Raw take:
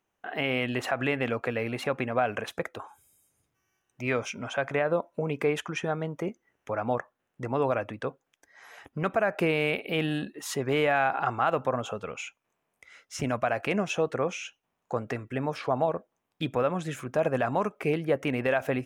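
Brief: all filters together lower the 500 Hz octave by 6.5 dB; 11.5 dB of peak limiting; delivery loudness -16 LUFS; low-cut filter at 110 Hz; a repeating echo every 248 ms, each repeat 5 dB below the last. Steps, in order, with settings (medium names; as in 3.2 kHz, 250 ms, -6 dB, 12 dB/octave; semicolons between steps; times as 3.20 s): high-pass 110 Hz; peaking EQ 500 Hz -8 dB; peak limiter -25 dBFS; feedback delay 248 ms, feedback 56%, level -5 dB; trim +20 dB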